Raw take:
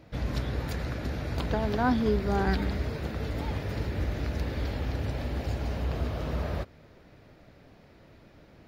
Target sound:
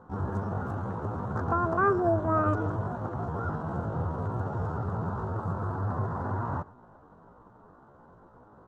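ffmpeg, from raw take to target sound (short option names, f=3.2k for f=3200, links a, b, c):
-af "firequalizer=gain_entry='entry(170,0);entry(900,7);entry(1400,-26);entry(2700,-22)':delay=0.05:min_phase=1,aecho=1:1:107:0.0794,asetrate=70004,aresample=44100,atempo=0.629961,volume=-1dB"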